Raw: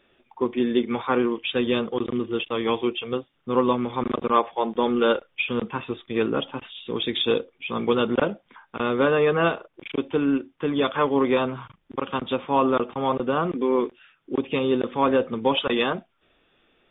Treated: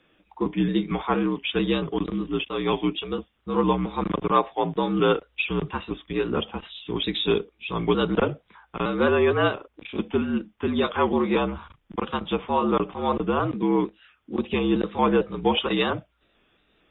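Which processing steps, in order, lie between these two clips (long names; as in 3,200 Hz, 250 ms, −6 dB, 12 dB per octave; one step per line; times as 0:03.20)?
pitch shifter gated in a rhythm +1 semitone, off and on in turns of 227 ms
frequency shifter −59 Hz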